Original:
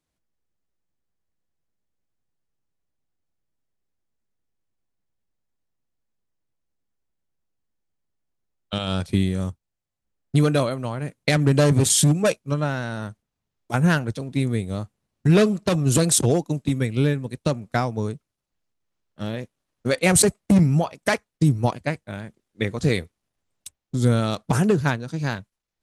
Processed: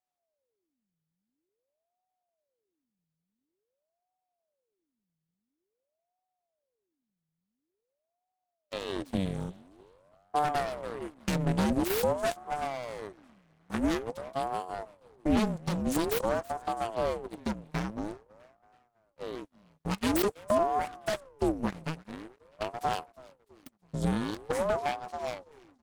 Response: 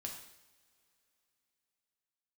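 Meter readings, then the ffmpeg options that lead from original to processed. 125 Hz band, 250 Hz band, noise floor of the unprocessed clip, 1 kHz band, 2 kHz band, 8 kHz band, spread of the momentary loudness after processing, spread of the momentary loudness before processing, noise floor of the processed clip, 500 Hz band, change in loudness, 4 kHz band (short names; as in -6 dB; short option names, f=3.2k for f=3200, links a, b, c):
-16.5 dB, -10.0 dB, -83 dBFS, -1.5 dB, -11.0 dB, -19.0 dB, 14 LU, 14 LU, under -85 dBFS, -7.5 dB, -10.0 dB, -11.0 dB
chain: -filter_complex "[0:a]asplit=4[a][b][c][d];[b]adelay=327,afreqshift=41,volume=-22dB[e];[c]adelay=654,afreqshift=82,volume=-28.6dB[f];[d]adelay=981,afreqshift=123,volume=-35.1dB[g];[a][e][f][g]amix=inputs=4:normalize=0,aeval=exprs='abs(val(0))':c=same,aeval=exprs='val(0)*sin(2*PI*450*n/s+450*0.65/0.48*sin(2*PI*0.48*n/s))':c=same,volume=-7dB"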